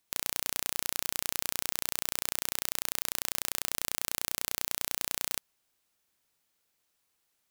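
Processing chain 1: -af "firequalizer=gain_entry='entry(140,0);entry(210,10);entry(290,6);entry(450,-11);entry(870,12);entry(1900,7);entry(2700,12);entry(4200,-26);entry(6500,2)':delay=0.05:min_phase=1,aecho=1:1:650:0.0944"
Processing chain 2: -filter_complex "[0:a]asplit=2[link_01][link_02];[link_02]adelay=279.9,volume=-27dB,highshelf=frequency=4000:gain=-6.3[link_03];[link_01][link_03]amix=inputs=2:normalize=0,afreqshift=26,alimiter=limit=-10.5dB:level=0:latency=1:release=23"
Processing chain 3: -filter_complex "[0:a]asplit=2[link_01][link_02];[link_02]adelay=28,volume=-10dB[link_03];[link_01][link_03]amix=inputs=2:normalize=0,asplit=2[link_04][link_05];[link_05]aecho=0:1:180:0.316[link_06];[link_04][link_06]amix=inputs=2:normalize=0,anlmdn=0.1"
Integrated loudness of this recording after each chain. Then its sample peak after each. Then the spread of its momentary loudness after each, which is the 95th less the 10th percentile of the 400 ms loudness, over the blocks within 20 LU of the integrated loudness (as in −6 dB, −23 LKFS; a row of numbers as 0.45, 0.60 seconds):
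−29.0, −35.0, −31.0 LKFS; −2.5, −10.5, −3.0 dBFS; 0, 0, 1 LU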